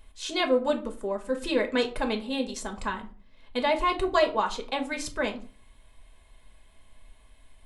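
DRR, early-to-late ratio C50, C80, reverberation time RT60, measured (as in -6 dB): 3.0 dB, 14.0 dB, 18.5 dB, 0.40 s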